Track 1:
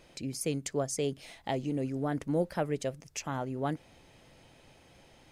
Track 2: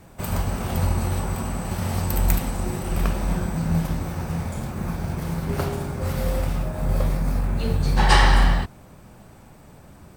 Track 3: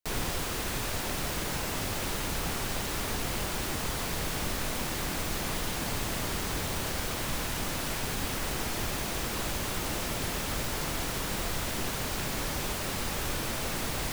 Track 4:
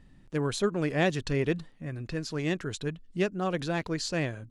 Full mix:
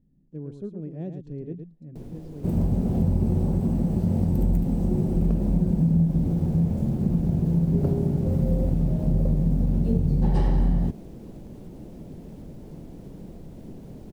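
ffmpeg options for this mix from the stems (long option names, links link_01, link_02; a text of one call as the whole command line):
ffmpeg -i stem1.wav -i stem2.wav -i stem3.wav -i stem4.wav -filter_complex "[0:a]adelay=1650,volume=-8dB[link_01];[1:a]acrusher=bits=5:mix=0:aa=0.000001,adelay=2250,volume=1.5dB[link_02];[2:a]acompressor=threshold=-33dB:ratio=4,adelay=1900,volume=-4dB[link_03];[3:a]volume=-11dB,asplit=3[link_04][link_05][link_06];[link_05]volume=-7.5dB[link_07];[link_06]apad=whole_len=307108[link_08];[link_01][link_08]sidechaincompress=threshold=-58dB:ratio=8:attack=16:release=277[link_09];[link_07]aecho=0:1:112:1[link_10];[link_09][link_02][link_03][link_04][link_10]amix=inputs=5:normalize=0,firequalizer=gain_entry='entry(100,0);entry(160,8);entry(1200,-22)':delay=0.05:min_phase=1,acompressor=threshold=-17dB:ratio=6" out.wav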